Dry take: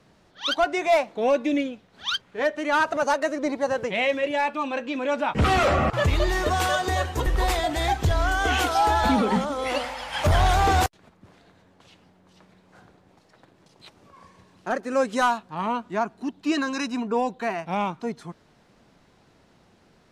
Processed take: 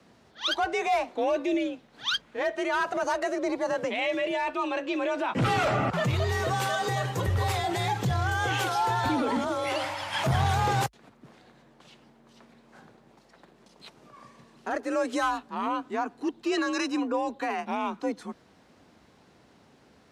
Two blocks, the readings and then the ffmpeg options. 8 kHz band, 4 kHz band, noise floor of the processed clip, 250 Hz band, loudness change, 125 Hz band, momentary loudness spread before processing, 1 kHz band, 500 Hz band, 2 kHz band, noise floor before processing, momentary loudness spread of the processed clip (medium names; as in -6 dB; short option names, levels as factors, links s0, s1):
-4.0 dB, -3.0 dB, -59 dBFS, -3.0 dB, -4.0 dB, -2.0 dB, 9 LU, -4.0 dB, -4.5 dB, -4.0 dB, -59 dBFS, 6 LU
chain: -af "alimiter=limit=0.1:level=0:latency=1:release=28,afreqshift=46"